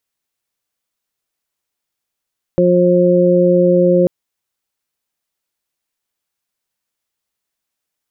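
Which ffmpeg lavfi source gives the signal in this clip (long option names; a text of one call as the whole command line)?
ffmpeg -f lavfi -i "aevalsrc='0.2*sin(2*PI*178*t)+0.211*sin(2*PI*356*t)+0.266*sin(2*PI*534*t)':duration=1.49:sample_rate=44100" out.wav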